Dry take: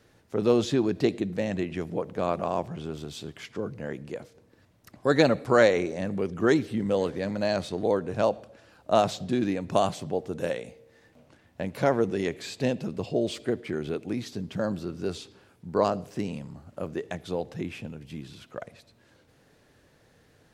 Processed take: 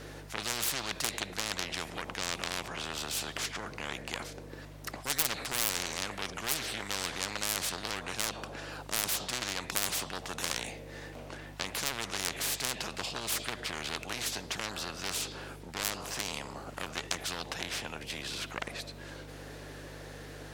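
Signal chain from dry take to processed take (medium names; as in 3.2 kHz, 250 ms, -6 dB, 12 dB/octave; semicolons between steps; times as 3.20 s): self-modulated delay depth 0.56 ms; mains buzz 50 Hz, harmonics 3, -44 dBFS; spectrum-flattening compressor 10:1; trim -1.5 dB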